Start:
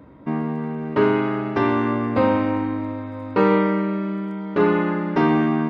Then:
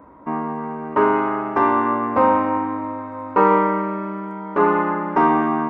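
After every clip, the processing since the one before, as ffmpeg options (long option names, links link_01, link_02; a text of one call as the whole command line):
ffmpeg -i in.wav -af "equalizer=frequency=125:width_type=o:width=1:gain=-10,equalizer=frequency=1000:width_type=o:width=1:gain=11,equalizer=frequency=4000:width_type=o:width=1:gain=-12,volume=-1dB" out.wav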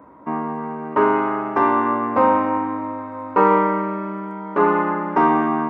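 ffmpeg -i in.wav -af "highpass=89" out.wav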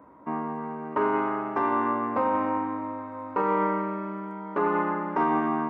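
ffmpeg -i in.wav -af "alimiter=limit=-9.5dB:level=0:latency=1:release=49,volume=-6dB" out.wav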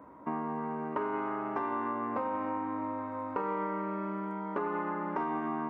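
ffmpeg -i in.wav -af "acompressor=threshold=-31dB:ratio=5" out.wav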